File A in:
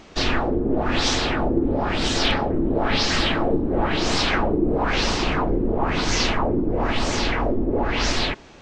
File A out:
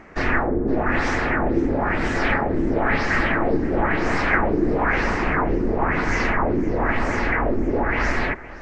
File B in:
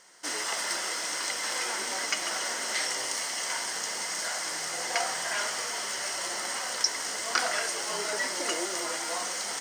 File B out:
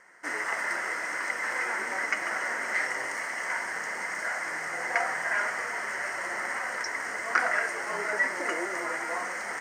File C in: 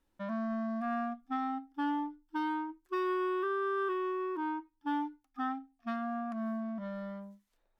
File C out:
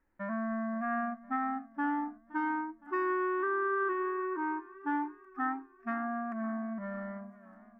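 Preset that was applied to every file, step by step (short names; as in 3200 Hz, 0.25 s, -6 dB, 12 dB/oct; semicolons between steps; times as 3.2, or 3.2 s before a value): resonant high shelf 2600 Hz -10.5 dB, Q 3; warbling echo 0.517 s, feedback 56%, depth 79 cents, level -19 dB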